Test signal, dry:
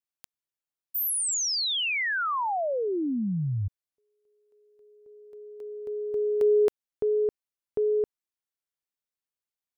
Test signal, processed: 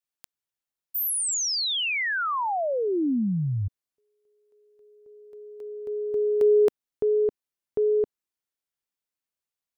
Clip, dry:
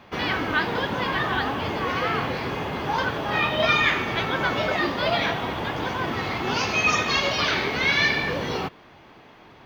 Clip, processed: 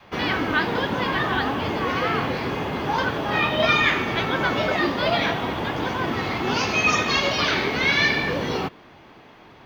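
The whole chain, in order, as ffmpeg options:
-af "adynamicequalizer=threshold=0.01:dfrequency=270:dqfactor=1.1:tfrequency=270:tqfactor=1.1:attack=5:release=100:ratio=0.375:range=1.5:mode=boostabove:tftype=bell,volume=1dB"

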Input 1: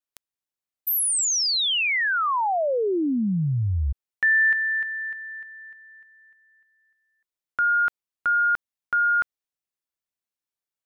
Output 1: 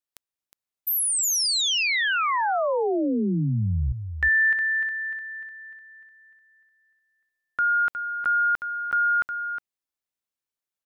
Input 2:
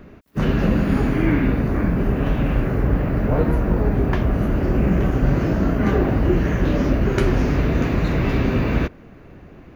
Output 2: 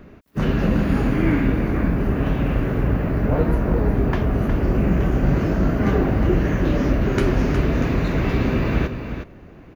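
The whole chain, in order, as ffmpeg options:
-af "aecho=1:1:362:0.376,volume=-1dB"

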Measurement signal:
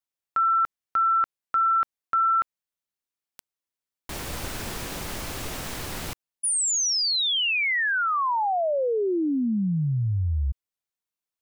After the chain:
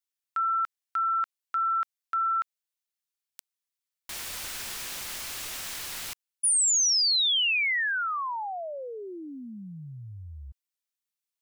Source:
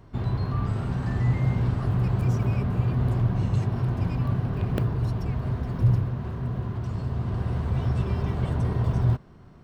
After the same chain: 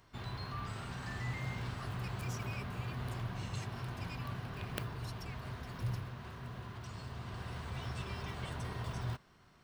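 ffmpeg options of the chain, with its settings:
-af "tiltshelf=f=940:g=-9.5,volume=-8dB"

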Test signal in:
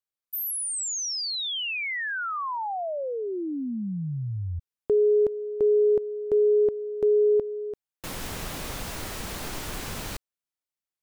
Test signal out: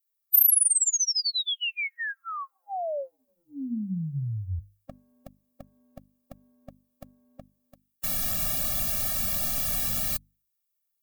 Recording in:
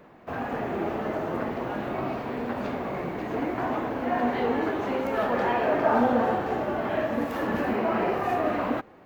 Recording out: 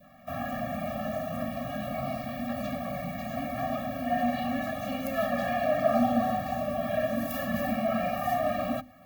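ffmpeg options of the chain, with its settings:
-af "aemphasis=mode=production:type=50fm,bandreject=f=50:t=h:w=6,bandreject=f=100:t=h:w=6,bandreject=f=150:t=h:w=6,bandreject=f=200:t=h:w=6,bandreject=f=250:t=h:w=6,bandreject=f=300:t=h:w=6,adynamicequalizer=threshold=0.00891:dfrequency=1300:dqfactor=1.6:tfrequency=1300:tqfactor=1.6:attack=5:release=100:ratio=0.375:range=2.5:mode=cutabove:tftype=bell,afftfilt=real='re*eq(mod(floor(b*sr/1024/270),2),0)':imag='im*eq(mod(floor(b*sr/1024/270),2),0)':win_size=1024:overlap=0.75,volume=1dB"

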